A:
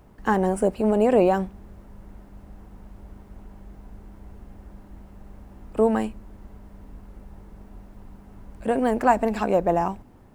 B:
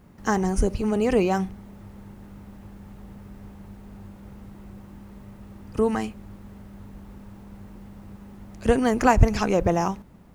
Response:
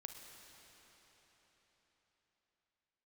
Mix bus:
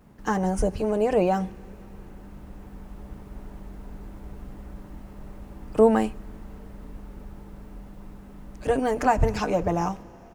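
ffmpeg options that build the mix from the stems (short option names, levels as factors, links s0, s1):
-filter_complex "[0:a]dynaudnorm=f=340:g=13:m=3.76,volume=0.596,asplit=2[s0][s1];[1:a]adelay=7.1,volume=0.596,asplit=2[s2][s3];[s3]volume=0.316[s4];[s1]apad=whole_len=456608[s5];[s2][s5]sidechaincompress=threshold=0.0501:ratio=8:attack=16:release=142[s6];[2:a]atrim=start_sample=2205[s7];[s4][s7]afir=irnorm=-1:irlink=0[s8];[s0][s6][s8]amix=inputs=3:normalize=0,bandreject=f=50:t=h:w=6,bandreject=f=100:t=h:w=6"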